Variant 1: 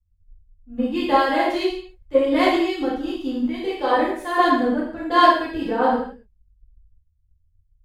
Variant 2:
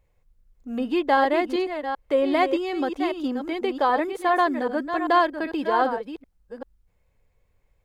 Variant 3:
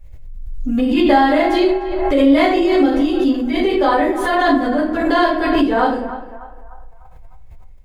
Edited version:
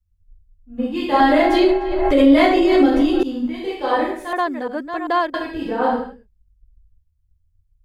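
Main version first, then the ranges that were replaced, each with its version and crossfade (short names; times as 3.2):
1
1.2–3.23 from 3
4.33–5.34 from 2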